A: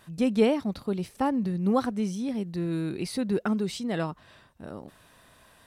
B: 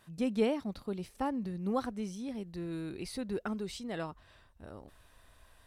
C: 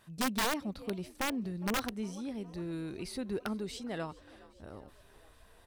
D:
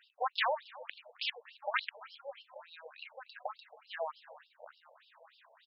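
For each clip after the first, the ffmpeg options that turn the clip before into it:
ffmpeg -i in.wav -af "asubboost=boost=9.5:cutoff=55,volume=-7dB" out.wav
ffmpeg -i in.wav -filter_complex "[0:a]asplit=6[link_01][link_02][link_03][link_04][link_05][link_06];[link_02]adelay=410,afreqshift=52,volume=-21.5dB[link_07];[link_03]adelay=820,afreqshift=104,volume=-25.4dB[link_08];[link_04]adelay=1230,afreqshift=156,volume=-29.3dB[link_09];[link_05]adelay=1640,afreqshift=208,volume=-33.1dB[link_10];[link_06]adelay=2050,afreqshift=260,volume=-37dB[link_11];[link_01][link_07][link_08][link_09][link_10][link_11]amix=inputs=6:normalize=0,aeval=exprs='(mod(17.8*val(0)+1,2)-1)/17.8':channel_layout=same" out.wav
ffmpeg -i in.wav -filter_complex "[0:a]asplit=2[link_01][link_02];[link_02]adelay=270,highpass=300,lowpass=3400,asoftclip=type=hard:threshold=-33.5dB,volume=-16dB[link_03];[link_01][link_03]amix=inputs=2:normalize=0,afftfilt=real='re*between(b*sr/1024,650*pow(3900/650,0.5+0.5*sin(2*PI*3.4*pts/sr))/1.41,650*pow(3900/650,0.5+0.5*sin(2*PI*3.4*pts/sr))*1.41)':imag='im*between(b*sr/1024,650*pow(3900/650,0.5+0.5*sin(2*PI*3.4*pts/sr))/1.41,650*pow(3900/650,0.5+0.5*sin(2*PI*3.4*pts/sr))*1.41)':win_size=1024:overlap=0.75,volume=6.5dB" out.wav

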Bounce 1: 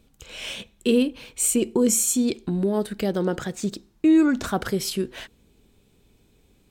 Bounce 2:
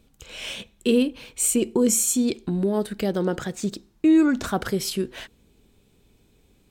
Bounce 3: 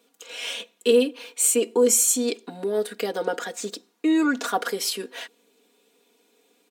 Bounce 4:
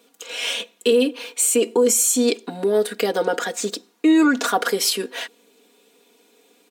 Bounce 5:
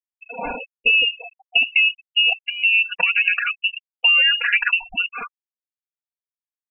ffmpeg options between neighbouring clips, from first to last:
ffmpeg -i in.wav -af anull out.wav
ffmpeg -i in.wav -af "highpass=frequency=330:width=0.5412,highpass=frequency=330:width=1.3066,aecho=1:1:4.2:0.93" out.wav
ffmpeg -i in.wav -af "alimiter=limit=-15.5dB:level=0:latency=1:release=70,volume=6.5dB" out.wav
ffmpeg -i in.wav -af "lowpass=frequency=2600:width_type=q:width=0.5098,lowpass=frequency=2600:width_type=q:width=0.6013,lowpass=frequency=2600:width_type=q:width=0.9,lowpass=frequency=2600:width_type=q:width=2.563,afreqshift=-3100,acompressor=threshold=-18dB:ratio=4,afftfilt=real='re*gte(hypot(re,im),0.0631)':imag='im*gte(hypot(re,im),0.0631)':win_size=1024:overlap=0.75,volume=4.5dB" out.wav

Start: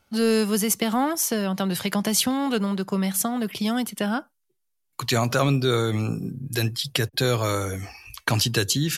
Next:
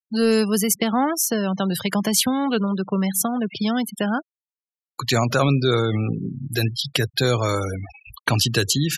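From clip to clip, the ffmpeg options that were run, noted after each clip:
ffmpeg -i in.wav -af "afftfilt=real='re*gte(hypot(re,im),0.0282)':imag='im*gte(hypot(re,im),0.0282)':win_size=1024:overlap=0.75,volume=2.5dB" out.wav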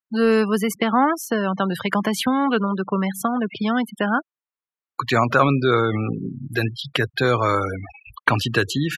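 ffmpeg -i in.wav -af "firequalizer=gain_entry='entry(160,0);entry(260,4);entry(690,4);entry(1100,10);entry(5200,-9)':delay=0.05:min_phase=1,volume=-2.5dB" out.wav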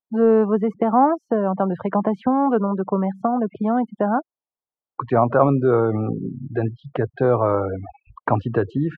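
ffmpeg -i in.wav -af "lowpass=frequency=760:width_type=q:width=1.8" out.wav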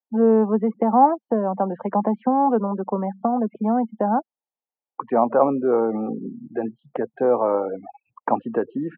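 ffmpeg -i in.wav -af "highpass=frequency=200:width=0.5412,highpass=frequency=200:width=1.3066,equalizer=frequency=220:width_type=q:width=4:gain=7,equalizer=frequency=510:width_type=q:width=4:gain=5,equalizer=frequency=840:width_type=q:width=4:gain=8,equalizer=frequency=1400:width_type=q:width=4:gain=-4,lowpass=frequency=2500:width=0.5412,lowpass=frequency=2500:width=1.3066,volume=-4.5dB" out.wav

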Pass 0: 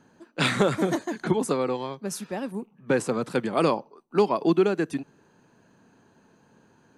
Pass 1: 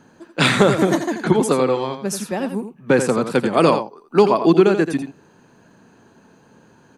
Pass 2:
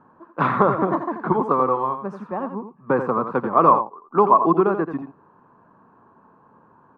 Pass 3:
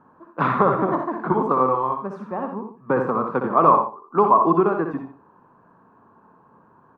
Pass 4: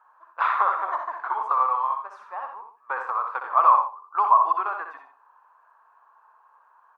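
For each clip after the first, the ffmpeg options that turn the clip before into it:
ffmpeg -i in.wav -af "aecho=1:1:85:0.355,volume=7.5dB" out.wav
ffmpeg -i in.wav -af "lowpass=frequency=1100:width_type=q:width=6.1,volume=-6.5dB" out.wav
ffmpeg -i in.wav -af "aecho=1:1:62|124|186:0.447|0.067|0.0101,volume=-1dB" out.wav
ffmpeg -i in.wav -af "highpass=frequency=840:width=0.5412,highpass=frequency=840:width=1.3066" out.wav

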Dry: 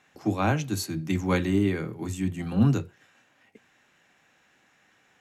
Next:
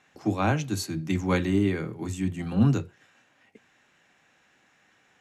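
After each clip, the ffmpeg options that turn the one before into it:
ffmpeg -i in.wav -af "lowpass=11000" out.wav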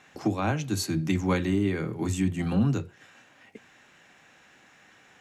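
ffmpeg -i in.wav -filter_complex "[0:a]asplit=2[link_01][link_02];[link_02]acompressor=threshold=-33dB:ratio=6,volume=1.5dB[link_03];[link_01][link_03]amix=inputs=2:normalize=0,alimiter=limit=-15dB:level=0:latency=1:release=486" out.wav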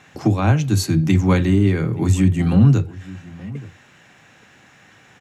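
ffmpeg -i in.wav -filter_complex "[0:a]equalizer=frequency=110:width_type=o:width=1.3:gain=9.5,asplit=2[link_01][link_02];[link_02]adelay=874.6,volume=-19dB,highshelf=frequency=4000:gain=-19.7[link_03];[link_01][link_03]amix=inputs=2:normalize=0,volume=6dB" out.wav

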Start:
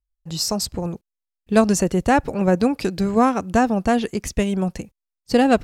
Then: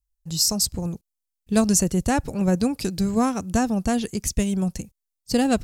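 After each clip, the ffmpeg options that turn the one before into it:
ffmpeg -i in.wav -af "bass=frequency=250:gain=9,treble=frequency=4000:gain=14,volume=-7.5dB" out.wav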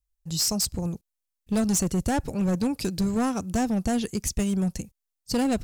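ffmpeg -i in.wav -filter_complex "[0:a]asplit=2[link_01][link_02];[link_02]alimiter=limit=-14dB:level=0:latency=1,volume=-0.5dB[link_03];[link_01][link_03]amix=inputs=2:normalize=0,volume=12.5dB,asoftclip=hard,volume=-12.5dB,volume=-7dB" out.wav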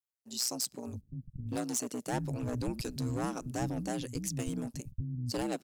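ffmpeg -i in.wav -filter_complex "[0:a]aeval=exprs='val(0)*sin(2*PI*62*n/s)':channel_layout=same,acrossover=split=210[link_01][link_02];[link_01]adelay=610[link_03];[link_03][link_02]amix=inputs=2:normalize=0,volume=-5dB" out.wav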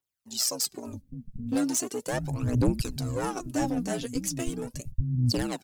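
ffmpeg -i in.wav -af "aphaser=in_gain=1:out_gain=1:delay=4.7:decay=0.65:speed=0.38:type=triangular,volume=3.5dB" out.wav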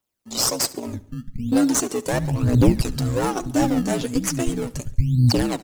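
ffmpeg -i in.wav -filter_complex "[0:a]asplit=2[link_01][link_02];[link_02]acrusher=samples=20:mix=1:aa=0.000001:lfo=1:lforange=20:lforate=1.1,volume=-7.5dB[link_03];[link_01][link_03]amix=inputs=2:normalize=0,aecho=1:1:70|140|210|280:0.1|0.052|0.027|0.0141,volume=5.5dB" out.wav

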